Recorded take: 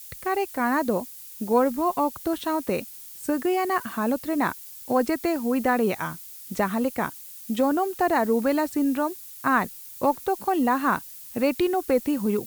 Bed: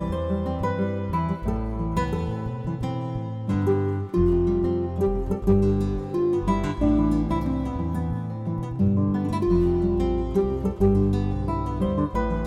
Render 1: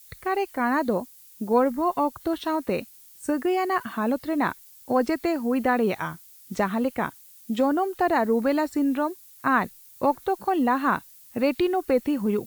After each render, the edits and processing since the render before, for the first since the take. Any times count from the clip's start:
noise reduction from a noise print 8 dB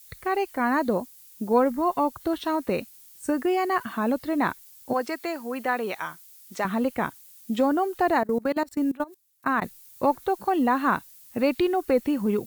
0:04.93–0:06.65: high-pass filter 740 Hz 6 dB per octave
0:08.19–0:09.62: output level in coarse steps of 23 dB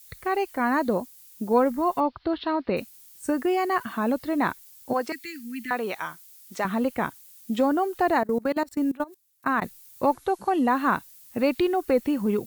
0:02.00–0:02.77: Butterworth low-pass 4,800 Hz 72 dB per octave
0:05.12–0:05.71: Chebyshev band-stop filter 280–1,900 Hz, order 3
0:10.13–0:10.68: linear-phase brick-wall low-pass 12,000 Hz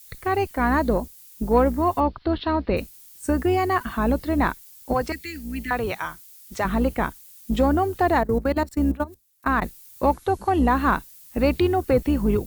sub-octave generator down 2 octaves, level −2 dB
in parallel at −8 dB: soft clipping −18 dBFS, distortion −15 dB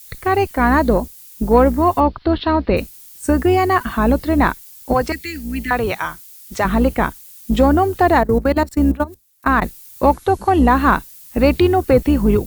level +6.5 dB
brickwall limiter −2 dBFS, peak gain reduction 1 dB

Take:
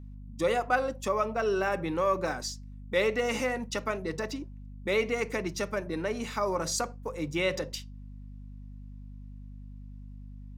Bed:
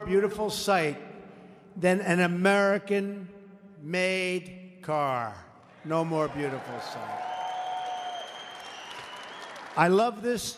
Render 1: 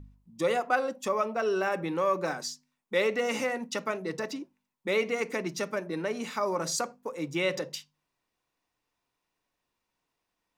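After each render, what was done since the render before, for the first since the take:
hum removal 50 Hz, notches 5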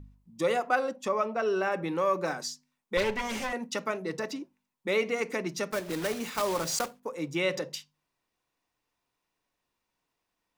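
0:00.91–0:01.83: high-shelf EQ 8,200 Hz −10 dB
0:02.97–0:03.53: lower of the sound and its delayed copy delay 5.1 ms
0:05.72–0:07.00: one scale factor per block 3 bits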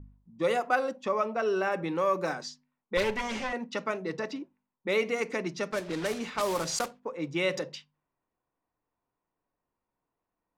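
low-pass that shuts in the quiet parts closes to 1,200 Hz, open at −25 dBFS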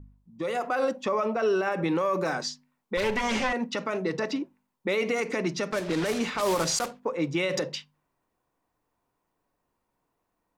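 brickwall limiter −25.5 dBFS, peak gain reduction 11.5 dB
automatic gain control gain up to 7.5 dB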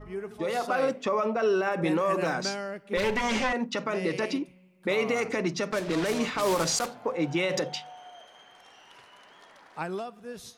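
mix in bed −12 dB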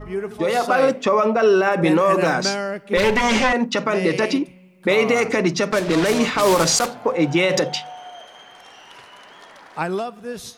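level +9.5 dB

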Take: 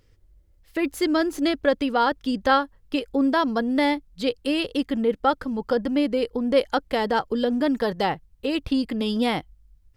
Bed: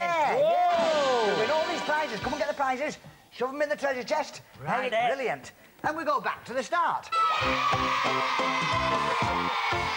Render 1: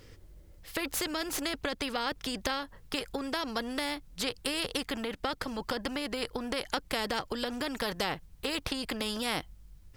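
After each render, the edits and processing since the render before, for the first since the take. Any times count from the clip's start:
downward compressor, threshold −23 dBFS, peak gain reduction 9 dB
every bin compressed towards the loudest bin 2 to 1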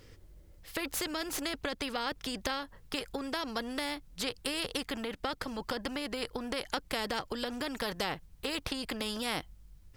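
level −2 dB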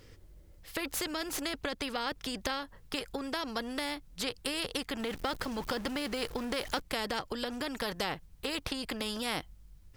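0:04.99–0:06.82: converter with a step at zero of −41 dBFS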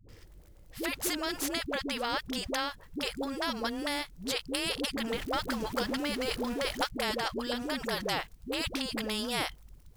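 in parallel at −9.5 dB: bit reduction 8 bits
on the sum: all-pass dispersion highs, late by 90 ms, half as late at 380 Hz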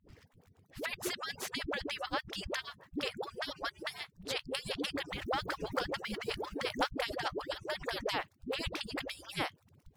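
harmonic-percussive split with one part muted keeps percussive
high-shelf EQ 5,200 Hz −11 dB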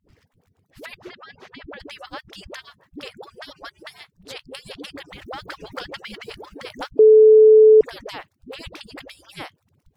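0:00.98–0:01.80: high-frequency loss of the air 270 metres
0:05.46–0:06.26: dynamic equaliser 3,000 Hz, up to +6 dB, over −50 dBFS, Q 0.75
0:06.99–0:07.81: beep over 434 Hz −6.5 dBFS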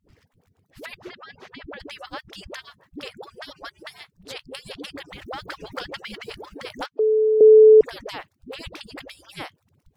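0:06.86–0:07.41: band-pass filter 690–4,600 Hz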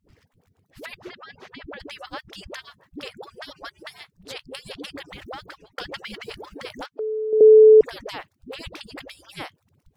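0:05.19–0:05.78: fade out
0:06.66–0:07.33: downward compressor 2 to 1, threshold −32 dBFS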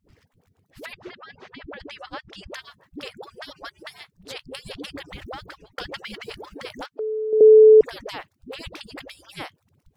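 0:00.93–0:02.52: high-frequency loss of the air 69 metres
0:04.46–0:05.86: low-shelf EQ 120 Hz +8 dB

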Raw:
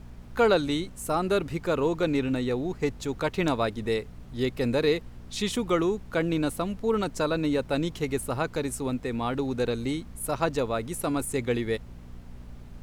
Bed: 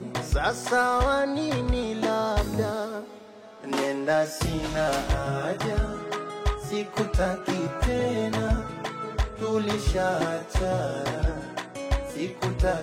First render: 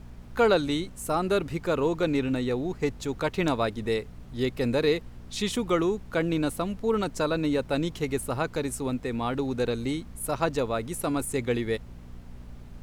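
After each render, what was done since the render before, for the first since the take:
no processing that can be heard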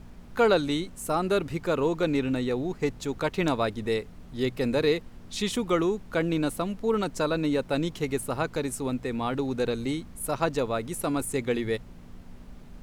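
hum removal 60 Hz, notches 2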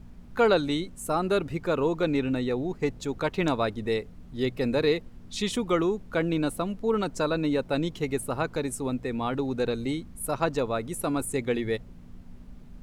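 broadband denoise 6 dB, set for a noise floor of −46 dBFS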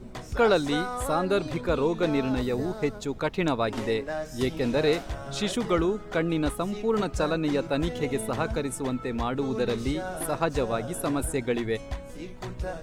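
mix in bed −9.5 dB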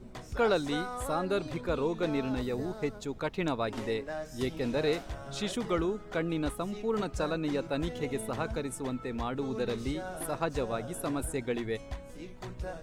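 level −5.5 dB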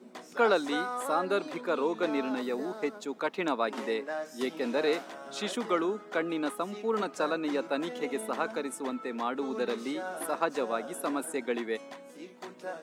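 dynamic equaliser 1,200 Hz, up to +5 dB, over −46 dBFS, Q 0.78
Butterworth high-pass 210 Hz 36 dB per octave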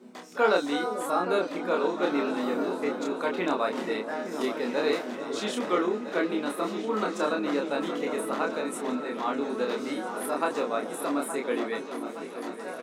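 double-tracking delay 28 ms −2.5 dB
echo whose low-pass opens from repeat to repeat 435 ms, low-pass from 400 Hz, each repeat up 2 octaves, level −6 dB

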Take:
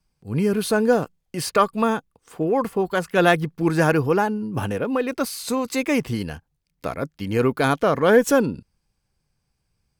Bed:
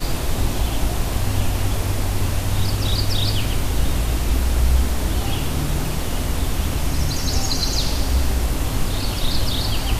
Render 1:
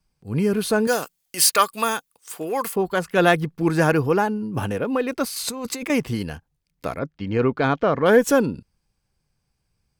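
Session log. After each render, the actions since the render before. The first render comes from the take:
0:00.87–0:02.76: spectral tilt +4.5 dB per octave
0:05.36–0:05.90: compressor whose output falls as the input rises −29 dBFS
0:06.99–0:08.06: high-frequency loss of the air 170 metres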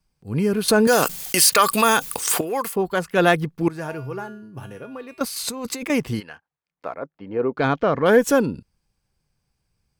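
0:00.68–0:02.41: envelope flattener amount 70%
0:03.68–0:05.21: tuned comb filter 130 Hz, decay 0.56 s, harmonics odd, mix 80%
0:06.19–0:07.56: resonant band-pass 1,700 Hz → 480 Hz, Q 1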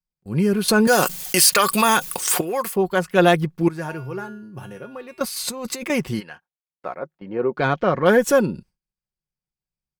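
noise gate with hold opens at −36 dBFS
comb filter 5.5 ms, depth 44%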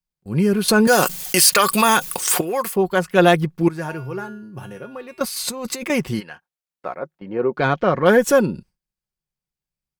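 level +1.5 dB
brickwall limiter −1 dBFS, peak gain reduction 1 dB

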